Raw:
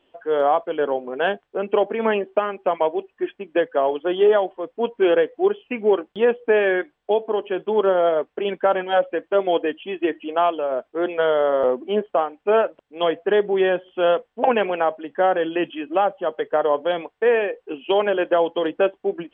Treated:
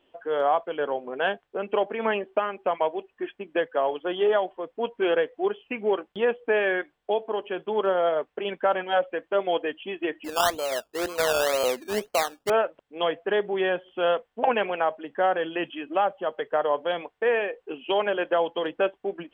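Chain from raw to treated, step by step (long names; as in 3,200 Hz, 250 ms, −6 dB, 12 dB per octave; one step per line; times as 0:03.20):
dynamic equaliser 300 Hz, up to −6 dB, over −31 dBFS, Q 0.72
0:10.24–0:12.50: sample-and-hold swept by an LFO 17×, swing 60% 2 Hz
level −2 dB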